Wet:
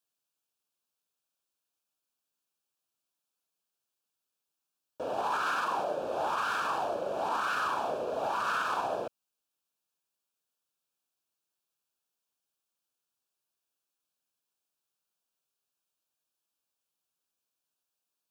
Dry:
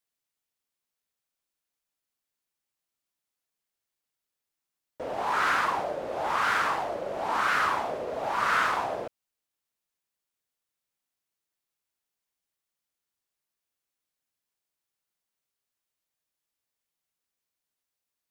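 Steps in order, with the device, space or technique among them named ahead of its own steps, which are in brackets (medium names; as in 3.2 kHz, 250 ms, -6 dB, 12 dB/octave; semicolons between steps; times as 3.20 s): PA system with an anti-feedback notch (high-pass 140 Hz 6 dB/octave; Butterworth band-stop 2 kHz, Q 3; peak limiter -22.5 dBFS, peak gain reduction 8 dB); 5.47–5.98 s: high-pass 120 Hz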